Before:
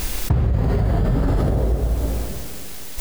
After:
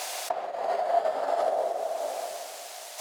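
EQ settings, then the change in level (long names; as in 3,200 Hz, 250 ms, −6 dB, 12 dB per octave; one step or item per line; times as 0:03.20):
four-pole ladder high-pass 630 Hz, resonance 75%
high-frequency loss of the air 56 metres
high-shelf EQ 4,600 Hz +10.5 dB
+6.5 dB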